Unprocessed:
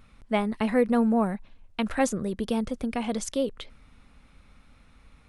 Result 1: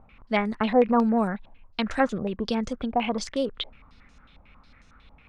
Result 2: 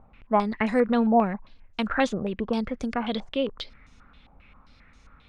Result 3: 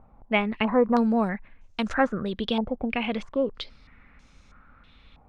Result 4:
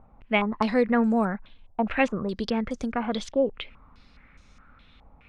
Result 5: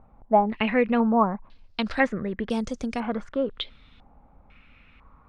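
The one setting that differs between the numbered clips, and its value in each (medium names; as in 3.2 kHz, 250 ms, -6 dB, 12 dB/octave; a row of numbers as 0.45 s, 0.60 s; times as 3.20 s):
step-sequenced low-pass, rate: 11 Hz, 7.5 Hz, 3.1 Hz, 4.8 Hz, 2 Hz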